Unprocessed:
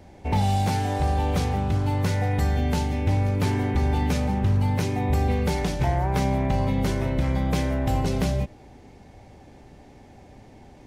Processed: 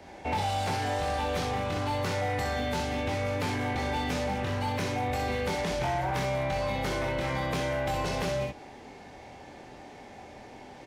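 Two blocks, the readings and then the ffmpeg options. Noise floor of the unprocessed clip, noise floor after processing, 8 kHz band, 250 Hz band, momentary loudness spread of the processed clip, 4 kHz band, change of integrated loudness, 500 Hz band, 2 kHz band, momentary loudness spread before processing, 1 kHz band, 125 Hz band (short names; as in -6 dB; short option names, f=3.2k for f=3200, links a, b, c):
-49 dBFS, -48 dBFS, -2.5 dB, -8.5 dB, 18 LU, +0.5 dB, -6.0 dB, -1.0 dB, +1.5 dB, 2 LU, -1.5 dB, -11.0 dB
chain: -filter_complex "[0:a]aecho=1:1:24|63:0.668|0.631,acrossover=split=180|1700|5300[a][b][c][d];[a]acompressor=threshold=-24dB:ratio=4[e];[b]acompressor=threshold=-28dB:ratio=4[f];[c]acompressor=threshold=-41dB:ratio=4[g];[d]acompressor=threshold=-45dB:ratio=4[h];[e][f][g][h]amix=inputs=4:normalize=0,asplit=2[i][j];[j]highpass=f=720:p=1,volume=18dB,asoftclip=type=tanh:threshold=-13dB[k];[i][k]amix=inputs=2:normalize=0,lowpass=f=4.5k:p=1,volume=-6dB,volume=-7dB"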